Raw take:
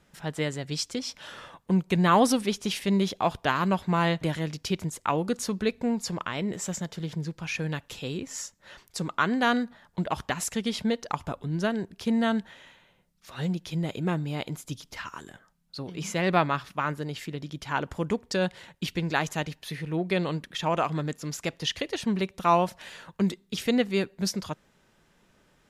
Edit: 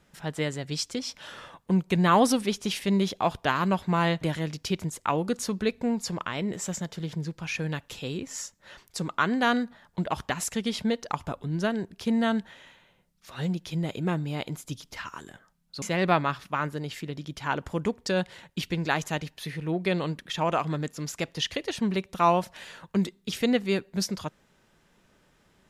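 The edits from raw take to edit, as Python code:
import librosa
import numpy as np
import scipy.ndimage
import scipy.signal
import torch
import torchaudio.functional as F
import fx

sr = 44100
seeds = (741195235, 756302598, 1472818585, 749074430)

y = fx.edit(x, sr, fx.cut(start_s=15.82, length_s=0.25), tone=tone)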